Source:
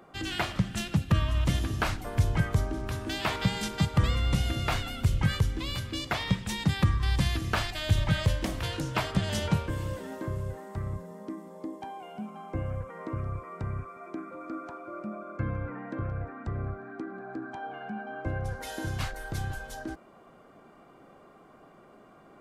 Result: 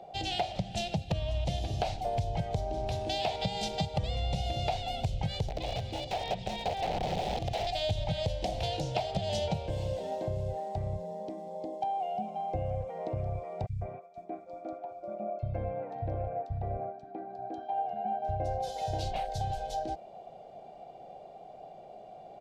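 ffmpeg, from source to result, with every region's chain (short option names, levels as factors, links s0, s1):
-filter_complex "[0:a]asettb=1/sr,asplit=3[s0][s1][s2];[s0]atrim=end=5.484[s3];[s1]atrim=start=5.48:end=7.67,asetpts=PTS-STARTPTS,afade=t=in:d=0.004:c=qsin,afade=t=out:st=2.186:d=0.004:c=qsin,aeval=exprs='(mod(17.8*val(0)+1,2)-1)/17.8':c=same,acrossover=split=2800[s4][s5];[s5]acompressor=threshold=0.00631:ratio=4:attack=1:release=60[s6];[s4][s6]amix=inputs=2:normalize=0[s7];[s2]atrim=start=7.666[s8];[s3][s7]acrossfade=d=0.004:c1=hsin:c2=qsin[s9];[s9][s8]acrossfade=d=0.004:c1=qsin:c2=hsin,asettb=1/sr,asplit=3[s10][s11][s12];[s10]atrim=end=13.664[s13];[s11]atrim=start=13.66:end=19.41,asetpts=PTS-STARTPTS,afade=t=in:d=0.004:c=qsin,afade=t=out:st=5.746:d=0.004:c=qsin,agate=range=0.0224:threshold=0.0141:ratio=3:release=100:detection=peak,acrossover=split=170|3200[s14][s15][s16];[s14]adelay=30[s17];[s15]adelay=150[s18];[s17][s18][s16]amix=inputs=3:normalize=0,atrim=end_sample=253575[s19];[s12]atrim=start=19.406[s20];[s13][s19]acrossfade=d=0.004:c1=hsin:c2=qsin[s21];[s21][s20]acrossfade=d=0.004:c1=qsin:c2=hsin,firequalizer=gain_entry='entry(170,0);entry(270,-9);entry(430,2);entry(740,15);entry(1100,-16);entry(1600,-13);entry(2400,-1);entry(3900,5);entry(11000,-12)':delay=0.05:min_phase=1,acompressor=threshold=0.0398:ratio=6"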